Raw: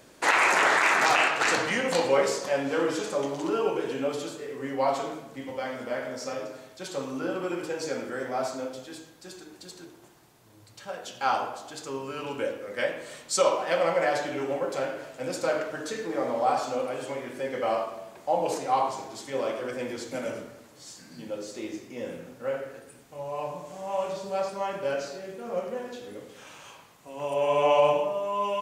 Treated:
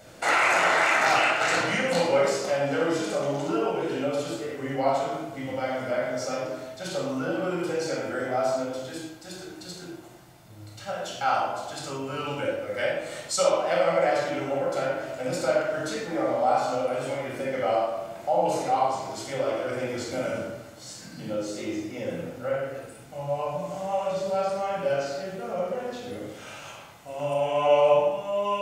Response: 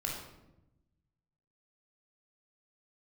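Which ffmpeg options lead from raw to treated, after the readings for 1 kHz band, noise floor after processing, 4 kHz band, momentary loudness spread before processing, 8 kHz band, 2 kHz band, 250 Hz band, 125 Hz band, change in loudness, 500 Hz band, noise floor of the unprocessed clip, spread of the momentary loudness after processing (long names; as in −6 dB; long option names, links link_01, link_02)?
+1.5 dB, −45 dBFS, +1.0 dB, 20 LU, 0.0 dB, +0.5 dB, +2.5 dB, +6.5 dB, +1.5 dB, +2.5 dB, −53 dBFS, 16 LU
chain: -filter_complex "[0:a]equalizer=frequency=680:width=5.8:gain=3,asplit=2[link_01][link_02];[link_02]acompressor=threshold=-34dB:ratio=6,volume=3dB[link_03];[link_01][link_03]amix=inputs=2:normalize=0[link_04];[1:a]atrim=start_sample=2205,afade=type=out:start_time=0.18:duration=0.01,atrim=end_sample=8379[link_05];[link_04][link_05]afir=irnorm=-1:irlink=0,volume=-4.5dB"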